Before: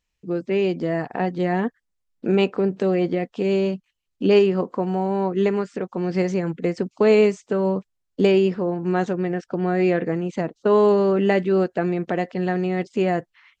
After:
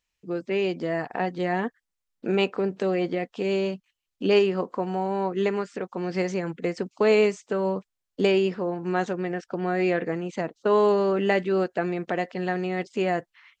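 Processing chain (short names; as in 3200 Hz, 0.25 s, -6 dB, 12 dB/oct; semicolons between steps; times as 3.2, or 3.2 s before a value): low shelf 420 Hz -8 dB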